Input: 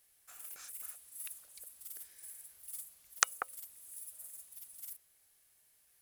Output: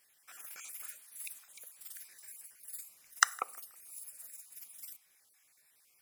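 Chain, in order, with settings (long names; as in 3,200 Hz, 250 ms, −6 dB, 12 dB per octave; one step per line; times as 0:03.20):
time-frequency cells dropped at random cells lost 28%
0:02.00–0:04.63: notch filter 3,300 Hz, Q 6
feedback echo with a low-pass in the loop 160 ms, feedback 35%, level −22.5 dB
convolution reverb RT60 0.45 s, pre-delay 3 ms, DRR 17.5 dB
level +2 dB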